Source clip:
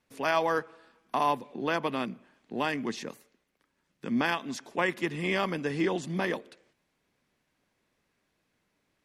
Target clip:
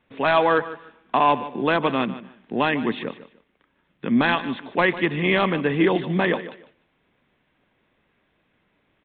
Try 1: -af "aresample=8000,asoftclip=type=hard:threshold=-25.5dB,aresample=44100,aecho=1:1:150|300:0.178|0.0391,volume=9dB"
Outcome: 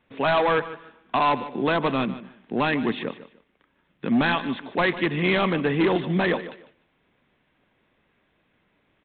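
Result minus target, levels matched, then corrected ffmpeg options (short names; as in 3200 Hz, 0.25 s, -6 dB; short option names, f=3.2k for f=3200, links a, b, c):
hard clip: distortion +9 dB
-af "aresample=8000,asoftclip=type=hard:threshold=-19dB,aresample=44100,aecho=1:1:150|300:0.178|0.0391,volume=9dB"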